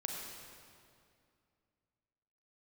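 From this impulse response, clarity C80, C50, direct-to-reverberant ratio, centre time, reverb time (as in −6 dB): 2.0 dB, 1.0 dB, 0.0 dB, 99 ms, 2.4 s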